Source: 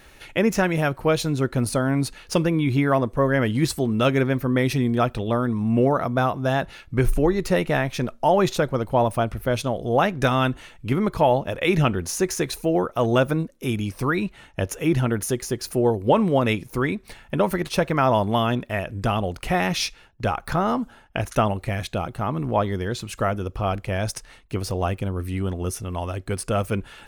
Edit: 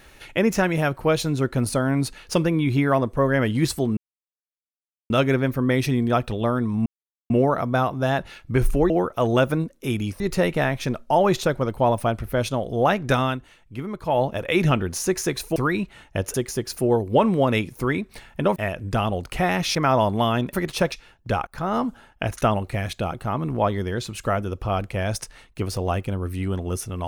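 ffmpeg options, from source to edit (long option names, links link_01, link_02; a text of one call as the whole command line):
ffmpeg -i in.wav -filter_complex "[0:a]asplit=14[link_01][link_02][link_03][link_04][link_05][link_06][link_07][link_08][link_09][link_10][link_11][link_12][link_13][link_14];[link_01]atrim=end=3.97,asetpts=PTS-STARTPTS,afade=type=out:start_time=3.966:duration=0.004:curve=hsin,apad=pad_dur=1.13[link_15];[link_02]atrim=start=3.97:end=5.73,asetpts=PTS-STARTPTS,afade=type=in:duration=0.004:curve=hsin,afade=type=out:start_time=1.756:duration=0.004:curve=hsin,apad=pad_dur=0.44[link_16];[link_03]atrim=start=5.73:end=7.332,asetpts=PTS-STARTPTS,afade=type=in:duration=0.004:curve=hsin[link_17];[link_04]atrim=start=12.688:end=13.992[link_18];[link_05]atrim=start=7.328:end=10.52,asetpts=PTS-STARTPTS,afade=type=out:start_time=2.992:duration=0.2:silence=0.354813[link_19];[link_06]atrim=start=10.52:end=11.17,asetpts=PTS-STARTPTS,volume=-9dB[link_20];[link_07]atrim=start=11.17:end=12.692,asetpts=PTS-STARTPTS,afade=type=in:duration=0.2:silence=0.354813[link_21];[link_08]atrim=start=13.988:end=14.772[link_22];[link_09]atrim=start=15.278:end=17.502[link_23];[link_10]atrim=start=18.668:end=19.862[link_24];[link_11]atrim=start=17.888:end=18.672[link_25];[link_12]atrim=start=17.498:end=17.892[link_26];[link_13]atrim=start=19.858:end=20.41,asetpts=PTS-STARTPTS,afade=type=out:start_time=0.548:duration=0.004:curve=hsin:silence=0.0841395[link_27];[link_14]atrim=start=20.41,asetpts=PTS-STARTPTS,afade=type=in:duration=0.31:silence=0.0841395[link_28];[link_15][link_16][link_17]concat=n=3:v=0:a=1[link_29];[link_29][link_18]acrossfade=duration=0.004:curve1=hsin:curve2=hsin[link_30];[link_19][link_20][link_21]concat=n=3:v=0:a=1[link_31];[link_30][link_31]acrossfade=duration=0.004:curve1=hsin:curve2=hsin[link_32];[link_32][link_22]acrossfade=duration=0.004:curve1=hsin:curve2=hsin[link_33];[link_33][link_23]acrossfade=duration=0.004:curve1=hsin:curve2=hsin[link_34];[link_34][link_24]acrossfade=duration=0.004:curve1=hsin:curve2=hsin[link_35];[link_35][link_25]acrossfade=duration=0.004:curve1=hsin:curve2=hsin[link_36];[link_36][link_26]acrossfade=duration=0.004:curve1=hsin:curve2=hsin[link_37];[link_27][link_28]concat=n=2:v=0:a=1[link_38];[link_37][link_38]acrossfade=duration=0.004:curve1=hsin:curve2=hsin" out.wav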